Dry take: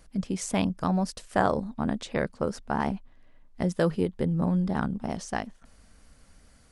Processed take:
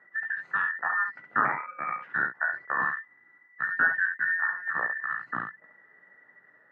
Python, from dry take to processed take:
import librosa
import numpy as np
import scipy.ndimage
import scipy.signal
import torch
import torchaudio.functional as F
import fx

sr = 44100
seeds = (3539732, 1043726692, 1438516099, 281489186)

y = fx.band_invert(x, sr, width_hz=2000)
y = fx.ring_mod(y, sr, carrier_hz=530.0, at=(1.45, 2.07))
y = fx.dynamic_eq(y, sr, hz=420.0, q=0.97, threshold_db=-47.0, ratio=4.0, max_db=-8)
y = scipy.signal.sosfilt(scipy.signal.cheby1(3, 1.0, [140.0, 1700.0], 'bandpass', fs=sr, output='sos'), y)
y = fx.room_early_taps(y, sr, ms=(17, 68), db=(-6.0, -5.5))
y = fx.end_taper(y, sr, db_per_s=330.0)